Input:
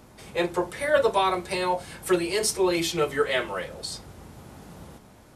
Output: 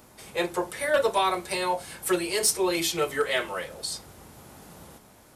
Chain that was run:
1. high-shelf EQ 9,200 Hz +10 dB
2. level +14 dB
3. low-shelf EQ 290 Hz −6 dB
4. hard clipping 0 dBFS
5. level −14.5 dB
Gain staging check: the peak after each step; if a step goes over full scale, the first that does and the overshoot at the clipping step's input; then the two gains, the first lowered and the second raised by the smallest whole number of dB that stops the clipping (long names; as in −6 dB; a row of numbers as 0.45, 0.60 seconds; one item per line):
−8.0, +6.0, +6.0, 0.0, −14.5 dBFS
step 2, 6.0 dB
step 2 +8 dB, step 5 −8.5 dB